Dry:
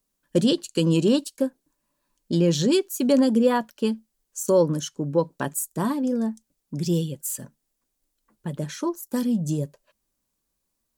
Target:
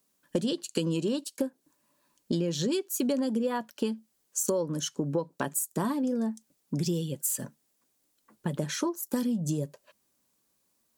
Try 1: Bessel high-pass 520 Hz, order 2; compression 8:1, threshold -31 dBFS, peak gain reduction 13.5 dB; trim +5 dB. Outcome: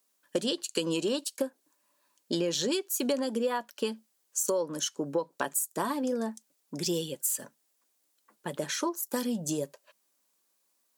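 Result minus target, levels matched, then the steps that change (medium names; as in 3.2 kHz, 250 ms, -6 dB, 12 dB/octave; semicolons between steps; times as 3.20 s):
125 Hz band -8.5 dB
change: Bessel high-pass 140 Hz, order 2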